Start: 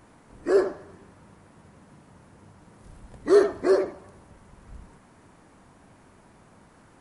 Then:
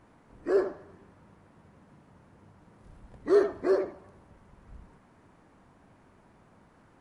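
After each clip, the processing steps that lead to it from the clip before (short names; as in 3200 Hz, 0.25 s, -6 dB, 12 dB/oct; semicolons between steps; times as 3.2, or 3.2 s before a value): high shelf 5500 Hz -11.5 dB; gain -4.5 dB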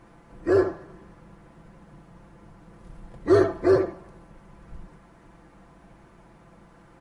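octaver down 2 oct, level -3 dB; comb 5.9 ms, depth 57%; gain +5 dB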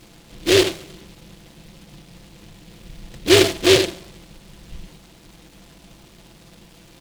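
noise-modulated delay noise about 3000 Hz, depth 0.22 ms; gain +5 dB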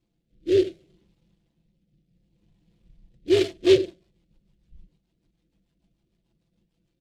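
rotary speaker horn 0.65 Hz, later 6.7 Hz, at 3.04; spectral expander 1.5:1; gain -4.5 dB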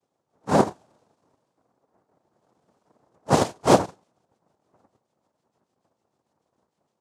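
noise vocoder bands 2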